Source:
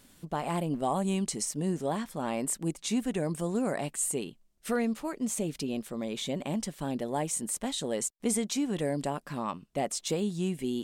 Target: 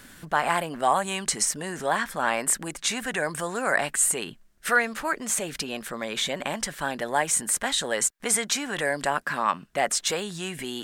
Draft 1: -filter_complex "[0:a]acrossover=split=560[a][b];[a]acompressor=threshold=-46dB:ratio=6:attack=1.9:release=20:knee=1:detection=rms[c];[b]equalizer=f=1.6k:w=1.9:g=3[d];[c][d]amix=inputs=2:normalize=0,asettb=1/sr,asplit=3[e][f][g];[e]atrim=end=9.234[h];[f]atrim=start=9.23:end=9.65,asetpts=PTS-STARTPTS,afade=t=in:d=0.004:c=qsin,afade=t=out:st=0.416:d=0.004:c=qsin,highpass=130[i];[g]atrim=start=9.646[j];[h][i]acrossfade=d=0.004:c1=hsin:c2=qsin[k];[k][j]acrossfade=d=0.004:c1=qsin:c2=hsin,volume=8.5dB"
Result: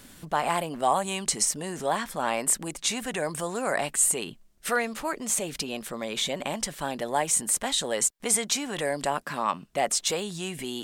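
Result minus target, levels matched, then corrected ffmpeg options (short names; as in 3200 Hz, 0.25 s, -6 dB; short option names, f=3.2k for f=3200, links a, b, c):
2000 Hz band -5.0 dB
-filter_complex "[0:a]acrossover=split=560[a][b];[a]acompressor=threshold=-46dB:ratio=6:attack=1.9:release=20:knee=1:detection=rms[c];[b]equalizer=f=1.6k:w=1.9:g=11.5[d];[c][d]amix=inputs=2:normalize=0,asettb=1/sr,asplit=3[e][f][g];[e]atrim=end=9.234[h];[f]atrim=start=9.23:end=9.65,asetpts=PTS-STARTPTS,afade=t=in:d=0.004:c=qsin,afade=t=out:st=0.416:d=0.004:c=qsin,highpass=130[i];[g]atrim=start=9.646[j];[h][i]acrossfade=d=0.004:c1=hsin:c2=qsin[k];[k][j]acrossfade=d=0.004:c1=qsin:c2=hsin,volume=8.5dB"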